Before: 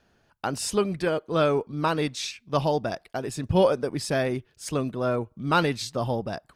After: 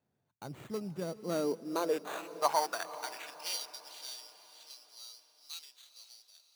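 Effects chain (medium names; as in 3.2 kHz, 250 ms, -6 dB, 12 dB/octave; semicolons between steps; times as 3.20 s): self-modulated delay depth 0.096 ms; Doppler pass-by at 2.84 s, 16 m/s, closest 7.4 m; low-pass 6.9 kHz 24 dB/octave; peaking EQ 1.9 kHz -10.5 dB 0.76 oct; sample-rate reducer 5.2 kHz, jitter 0%; high-pass sweep 120 Hz -> 3.9 kHz, 0.78–3.73 s; echo that smears into a reverb 480 ms, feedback 46%, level -14.5 dB; trim -1.5 dB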